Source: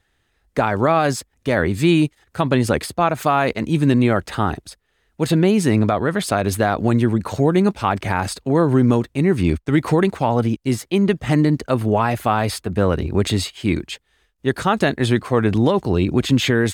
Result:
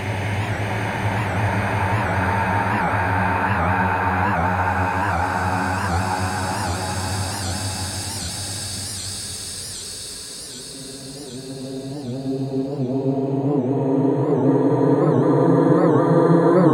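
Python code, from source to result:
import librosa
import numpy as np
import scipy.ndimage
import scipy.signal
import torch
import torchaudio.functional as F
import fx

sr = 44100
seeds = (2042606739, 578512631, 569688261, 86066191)

y = fx.paulstretch(x, sr, seeds[0], factor=31.0, window_s=0.25, from_s=8.04)
y = fx.record_warp(y, sr, rpm=78.0, depth_cents=160.0)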